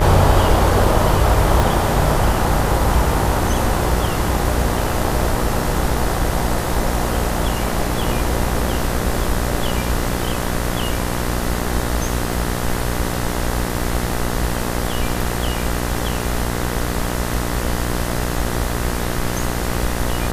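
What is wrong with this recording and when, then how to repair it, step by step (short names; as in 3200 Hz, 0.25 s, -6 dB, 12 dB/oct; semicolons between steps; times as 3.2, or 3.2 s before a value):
buzz 60 Hz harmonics 34 -23 dBFS
1.6 pop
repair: de-click; de-hum 60 Hz, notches 34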